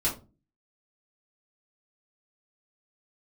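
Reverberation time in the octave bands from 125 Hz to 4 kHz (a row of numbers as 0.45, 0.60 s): 0.55, 0.50, 0.35, 0.25, 0.20, 0.20 s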